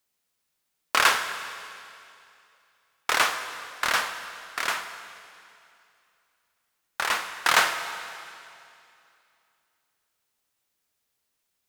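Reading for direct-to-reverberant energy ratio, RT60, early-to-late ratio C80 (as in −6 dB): 8.5 dB, 2.6 s, 10.0 dB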